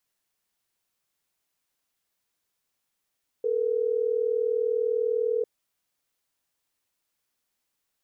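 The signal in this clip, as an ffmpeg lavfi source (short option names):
-f lavfi -i "aevalsrc='0.0531*(sin(2*PI*440*t)+sin(2*PI*480*t))*clip(min(mod(t,6),2-mod(t,6))/0.005,0,1)':d=3.12:s=44100"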